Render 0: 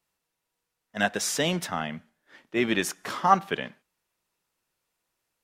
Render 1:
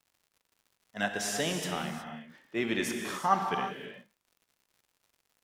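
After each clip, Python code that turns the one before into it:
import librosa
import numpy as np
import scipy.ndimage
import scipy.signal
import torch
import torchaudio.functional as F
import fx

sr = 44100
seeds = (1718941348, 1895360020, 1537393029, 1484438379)

y = fx.rev_gated(x, sr, seeds[0], gate_ms=390, shape='flat', drr_db=3.0)
y = fx.dmg_crackle(y, sr, seeds[1], per_s=150.0, level_db=-47.0)
y = F.gain(torch.from_numpy(y), -6.5).numpy()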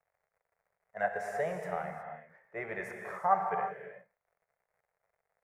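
y = fx.curve_eq(x, sr, hz=(180.0, 270.0, 430.0, 660.0, 1000.0, 2100.0, 3100.0, 9800.0), db=(0, -24, 6, 12, 3, 4, -22, -12))
y = F.gain(torch.from_numpy(y), -7.0).numpy()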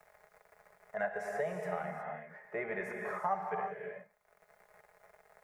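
y = x + 0.5 * np.pad(x, (int(4.8 * sr / 1000.0), 0))[:len(x)]
y = fx.band_squash(y, sr, depth_pct=70)
y = F.gain(torch.from_numpy(y), -3.0).numpy()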